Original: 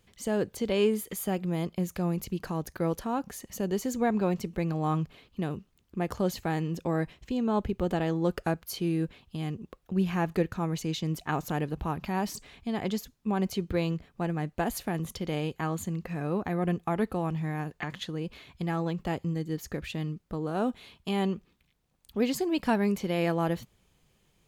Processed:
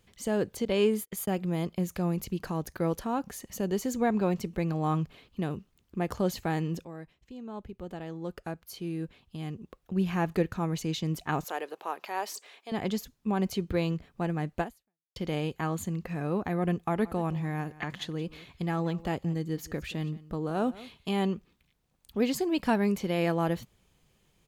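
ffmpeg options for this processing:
-filter_complex "[0:a]asettb=1/sr,asplit=3[s0][s1][s2];[s0]atrim=end=0.654[s3];[s1]atrim=start=0.65:end=1.28,asetpts=PTS-STARTPTS,afade=t=in:d=0.004:c=qsin,afade=t=out:st=0.626:d=0.004:c=qsin,agate=range=0.0158:threshold=0.0112:ratio=16:release=100:detection=peak[s4];[s2]atrim=start=1.276[s5];[s3][s4]acrossfade=d=0.004:c1=hsin:c2=qsin[s6];[s6][s5]acrossfade=d=0.004:c1=qsin:c2=hsin,asettb=1/sr,asplit=3[s7][s8][s9];[s7]atrim=end=11.444[s10];[s8]atrim=start=11.44:end=12.72,asetpts=PTS-STARTPTS,afade=t=in:d=0.004:c=qsin,afade=t=out:st=1.276:d=0.004:c=qsin,highpass=f=420:w=0.5412,highpass=f=420:w=1.3066[s11];[s9]atrim=start=12.716[s12];[s10][s11]acrossfade=d=0.004:c1=hsin:c2=qsin[s13];[s13][s12]acrossfade=d=0.004:c1=qsin:c2=hsin,asplit=3[s14][s15][s16];[s14]afade=t=out:st=17.04:d=0.02[s17];[s15]aecho=1:1:174:0.112,afade=t=in:st=17.04:d=0.02,afade=t=out:st=21.08:d=0.02[s18];[s16]afade=t=in:st=21.08:d=0.02[s19];[s17][s18][s19]amix=inputs=3:normalize=0,asplit=3[s20][s21][s22];[s20]atrim=end=6.85,asetpts=PTS-STARTPTS,afade=t=out:st=6.846:d=0.004:c=hsin:silence=0.188365[s23];[s21]atrim=start=6.85:end=15.16,asetpts=PTS-STARTPTS,afade=t=in:d=3.38:c=qua:silence=0.188365,afade=t=out:st=7.76:d=0.55:c=exp[s24];[s22]atrim=start=15.16,asetpts=PTS-STARTPTS,afade=t=in:d=0.004:c=hsin[s25];[s23][s24][s25]concat=n=3:v=0:a=1"

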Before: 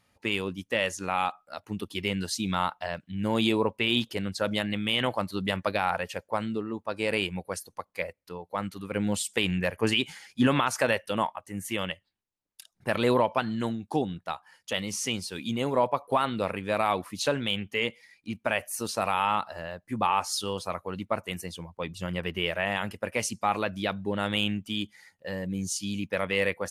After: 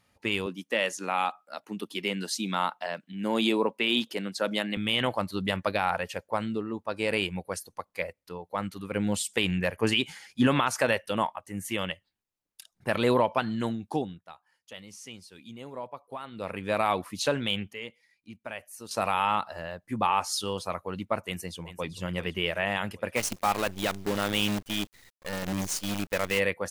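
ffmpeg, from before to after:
-filter_complex "[0:a]asettb=1/sr,asplit=3[s0][s1][s2];[s0]atrim=end=0.464[s3];[s1]atrim=start=0.46:end=4.77,asetpts=PTS-STARTPTS,afade=t=in:d=0.004:c=qsin,afade=t=out:st=4.306:d=0.004:c=qsin,highpass=f=190:w=0.5412,highpass=f=190:w=1.3066[s4];[s2]atrim=start=4.766[s5];[s3][s4]acrossfade=d=0.004:c1=hsin:c2=qsin[s6];[s6][s5]acrossfade=d=0.004:c1=qsin:c2=hsin,asplit=2[s7][s8];[s8]afade=t=in:st=21.26:d=0.01,afade=t=out:st=21.89:d=0.01,aecho=0:1:390|780|1170|1560|1950:0.237137|0.118569|0.0592843|0.0296422|0.0148211[s9];[s7][s9]amix=inputs=2:normalize=0,asplit=3[s10][s11][s12];[s10]afade=t=out:st=23.15:d=0.02[s13];[s11]acrusher=bits=6:dc=4:mix=0:aa=0.000001,afade=t=in:st=23.15:d=0.02,afade=t=out:st=26.38:d=0.02[s14];[s12]afade=t=in:st=26.38:d=0.02[s15];[s13][s14][s15]amix=inputs=3:normalize=0,asplit=5[s16][s17][s18][s19][s20];[s16]atrim=end=14.24,asetpts=PTS-STARTPTS,afade=t=out:st=13.88:d=0.36:silence=0.199526[s21];[s17]atrim=start=14.24:end=16.31,asetpts=PTS-STARTPTS,volume=0.2[s22];[s18]atrim=start=16.31:end=17.732,asetpts=PTS-STARTPTS,afade=t=in:d=0.36:silence=0.199526[s23];[s19]atrim=start=17.728:end=18.912,asetpts=PTS-STARTPTS,volume=0.282[s24];[s20]atrim=start=18.908[s25];[s21][s22][s23]concat=n=3:v=0:a=1[s26];[s26][s24]acrossfade=d=0.004:c1=hsin:c2=hsin[s27];[s27][s25]acrossfade=d=0.004:c1=hsin:c2=hsin"

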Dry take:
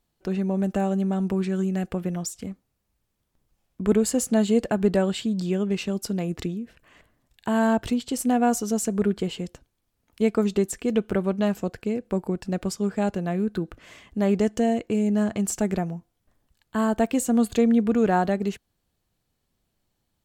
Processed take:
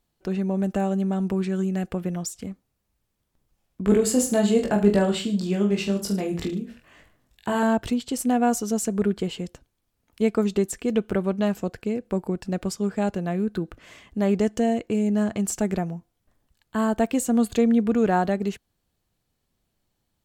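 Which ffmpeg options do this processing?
-filter_complex "[0:a]asettb=1/sr,asplit=3[s0][s1][s2];[s0]atrim=end=3.844[s3];[s1]atrim=start=3.84:end=7.63,asetpts=PTS-STARTPTS,afade=t=in:d=0.004:c=qsin,afade=t=out:st=3.786:d=0.004:c=qsin,aecho=1:1:20|44|72.8|107.4|148.8:0.631|0.398|0.251|0.158|0.1,atrim=end_sample=167139[s4];[s2]atrim=start=7.626[s5];[s3][s4]acrossfade=d=0.004:c1=hsin:c2=qsin[s6];[s6][s5]acrossfade=d=0.004:c1=qsin:c2=hsin"

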